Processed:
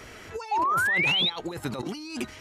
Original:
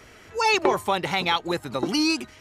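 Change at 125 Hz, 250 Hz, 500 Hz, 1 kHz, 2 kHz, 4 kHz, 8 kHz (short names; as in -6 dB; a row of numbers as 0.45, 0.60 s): -1.0, -8.0, -10.5, -3.0, +2.0, 0.0, -7.0 dB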